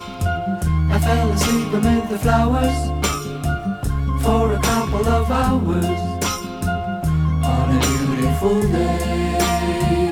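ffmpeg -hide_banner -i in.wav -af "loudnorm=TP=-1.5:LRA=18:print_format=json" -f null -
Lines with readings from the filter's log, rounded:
"input_i" : "-19.1",
"input_tp" : "-4.4",
"input_lra" : "1.1",
"input_thresh" : "-29.1",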